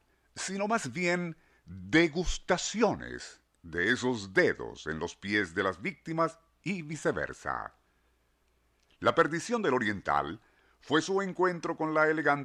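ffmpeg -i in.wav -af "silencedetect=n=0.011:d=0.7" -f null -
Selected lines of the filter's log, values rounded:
silence_start: 7.66
silence_end: 9.02 | silence_duration: 1.36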